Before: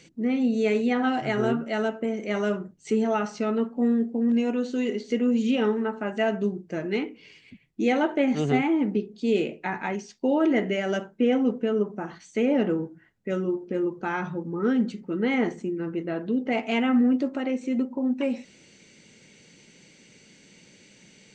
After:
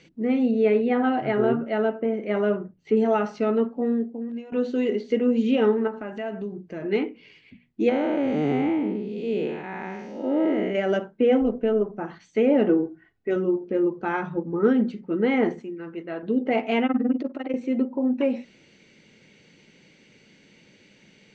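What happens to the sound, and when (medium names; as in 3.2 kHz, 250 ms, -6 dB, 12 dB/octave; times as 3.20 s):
0.51–2.97 s: distance through air 200 m
3.64–4.52 s: fade out, to -17.5 dB
5.87–6.82 s: compression, threshold -29 dBFS
7.89–10.75 s: spectral blur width 281 ms
11.41–11.99 s: AM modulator 220 Hz, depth 30%
12.69–13.36 s: comb 2.7 ms, depth 57%
14.09–14.93 s: transient shaper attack +4 dB, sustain -2 dB
15.60–16.23 s: bass shelf 440 Hz -9.5 dB
16.86–17.54 s: AM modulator 20 Hz, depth 95%
whole clip: low-pass 3.9 kHz 12 dB/octave; hum notches 60/120/180/240 Hz; dynamic bell 470 Hz, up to +5 dB, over -34 dBFS, Q 0.81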